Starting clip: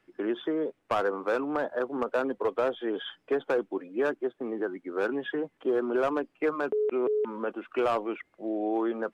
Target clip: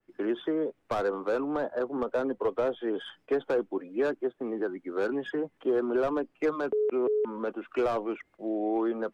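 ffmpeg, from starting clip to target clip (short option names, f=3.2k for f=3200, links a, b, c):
-filter_complex "[0:a]lowshelf=f=73:g=8.5,acrossover=split=430|610[a][b][c];[c]asoftclip=type=tanh:threshold=-30dB[d];[a][b][d]amix=inputs=3:normalize=0,agate=range=-8dB:threshold=-58dB:ratio=16:detection=peak,adynamicequalizer=threshold=0.00708:dfrequency=1700:dqfactor=0.7:tfrequency=1700:tqfactor=0.7:attack=5:release=100:ratio=0.375:range=3:mode=cutabove:tftype=highshelf"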